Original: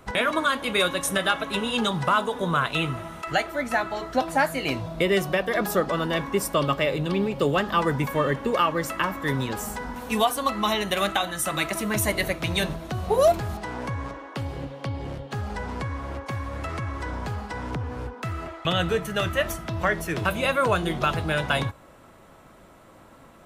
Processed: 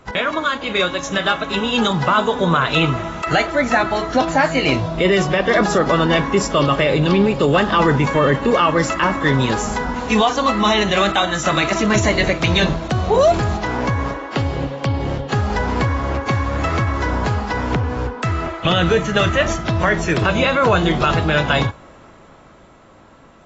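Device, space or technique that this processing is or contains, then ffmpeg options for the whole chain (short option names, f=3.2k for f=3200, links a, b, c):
low-bitrate web radio: -af "dynaudnorm=f=120:g=31:m=9dB,alimiter=limit=-9.5dB:level=0:latency=1:release=16,volume=3dB" -ar 22050 -c:a aac -b:a 24k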